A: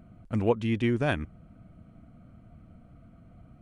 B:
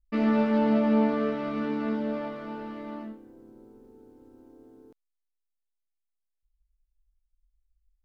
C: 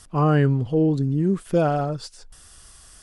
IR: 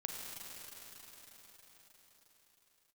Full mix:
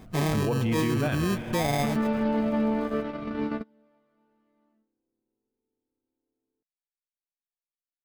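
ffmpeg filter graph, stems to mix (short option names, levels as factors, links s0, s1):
-filter_complex "[0:a]volume=0.944,asplit=3[s0][s1][s2];[s1]volume=0.668[s3];[1:a]adelay=1700,volume=1.19[s4];[2:a]acompressor=threshold=0.0891:ratio=2.5,acrusher=samples=31:mix=1:aa=0.000001,volume=0.841[s5];[s2]apad=whole_len=429854[s6];[s4][s6]sidechaingate=range=0.02:threshold=0.00251:ratio=16:detection=peak[s7];[3:a]atrim=start_sample=2205[s8];[s3][s8]afir=irnorm=-1:irlink=0[s9];[s0][s7][s5][s9]amix=inputs=4:normalize=0,alimiter=limit=0.119:level=0:latency=1:release=16"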